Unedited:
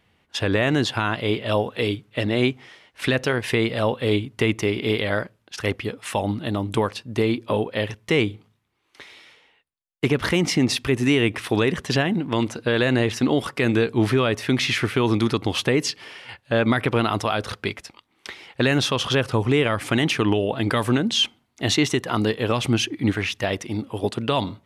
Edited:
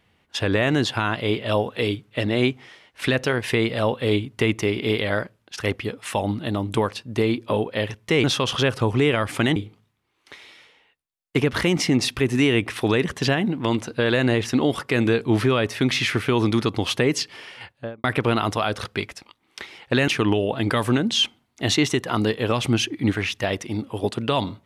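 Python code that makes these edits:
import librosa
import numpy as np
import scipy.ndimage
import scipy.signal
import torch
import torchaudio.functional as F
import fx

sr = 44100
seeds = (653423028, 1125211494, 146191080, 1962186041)

y = fx.studio_fade_out(x, sr, start_s=16.26, length_s=0.46)
y = fx.edit(y, sr, fx.move(start_s=18.76, length_s=1.32, to_s=8.24), tone=tone)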